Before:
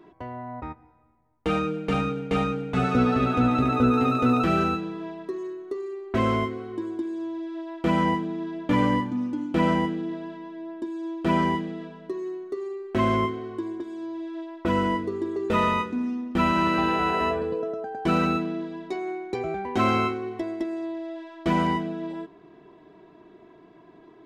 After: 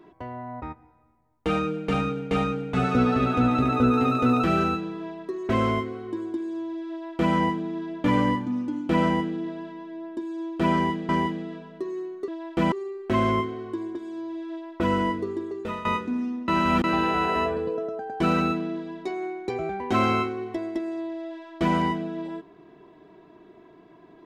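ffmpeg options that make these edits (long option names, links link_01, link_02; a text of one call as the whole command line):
ffmpeg -i in.wav -filter_complex "[0:a]asplit=8[link_01][link_02][link_03][link_04][link_05][link_06][link_07][link_08];[link_01]atrim=end=5.492[link_09];[link_02]atrim=start=6.138:end=11.742[link_10];[link_03]atrim=start=11.378:end=12.572[link_11];[link_04]atrim=start=7.548:end=7.992[link_12];[link_05]atrim=start=12.568:end=15.7,asetpts=PTS-STARTPTS,afade=type=out:start_time=2.532:duration=0.6:silence=0.149624[link_13];[link_06]atrim=start=15.7:end=16.332,asetpts=PTS-STARTPTS,afade=type=in:duration=0.004:curve=hsin:silence=0.149624[link_14];[link_07]atrim=start=16.328:end=16.692,asetpts=PTS-STARTPTS,areverse[link_15];[link_08]atrim=start=16.688[link_16];[link_09][link_10]acrossfade=duration=0.004:curve1=hsin:curve2=hsin[link_17];[link_17][link_11]acrossfade=duration=0.004:curve1=hsin:curve2=hsin[link_18];[link_18][link_12]acrossfade=duration=0.004:curve1=hsin:curve2=hsin[link_19];[link_13][link_14]concat=n=2:v=0:a=1[link_20];[link_19][link_20]acrossfade=duration=0.004:curve1=hsin:curve2=hsin[link_21];[link_21][link_15]acrossfade=duration=0.004:curve1=hsin:curve2=hsin[link_22];[link_22][link_16]acrossfade=duration=0.004:curve1=hsin:curve2=hsin" out.wav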